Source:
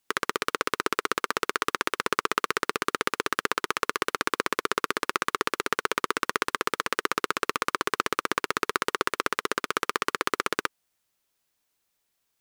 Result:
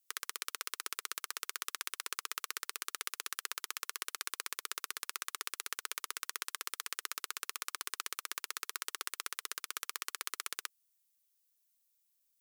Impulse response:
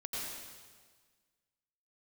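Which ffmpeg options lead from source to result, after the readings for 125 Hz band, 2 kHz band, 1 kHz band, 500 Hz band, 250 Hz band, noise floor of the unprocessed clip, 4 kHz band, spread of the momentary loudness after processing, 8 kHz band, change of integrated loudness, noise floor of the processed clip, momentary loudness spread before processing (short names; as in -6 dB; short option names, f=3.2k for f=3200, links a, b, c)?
under -35 dB, -15.0 dB, -18.5 dB, -27.0 dB, -30.0 dB, -77 dBFS, -8.5 dB, 1 LU, -3.0 dB, -11.5 dB, -77 dBFS, 1 LU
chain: -af "aderivative,volume=-3dB"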